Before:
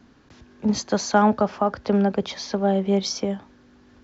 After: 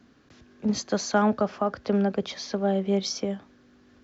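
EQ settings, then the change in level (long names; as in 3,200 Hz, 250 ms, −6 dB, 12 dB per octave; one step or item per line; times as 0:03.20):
low-shelf EQ 66 Hz −8.5 dB
parametric band 900 Hz −7.5 dB 0.26 octaves
−3.0 dB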